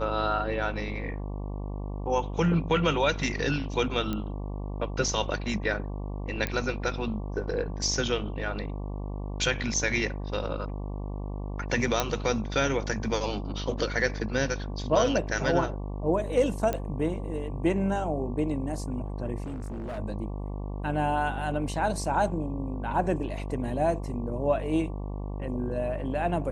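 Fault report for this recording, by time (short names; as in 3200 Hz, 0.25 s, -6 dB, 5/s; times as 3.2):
buzz 50 Hz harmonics 23 -34 dBFS
4.13 pop -18 dBFS
6.47 pop -15 dBFS
12 pop -9 dBFS
16.73 pop -15 dBFS
19.44–19.99 clipped -32 dBFS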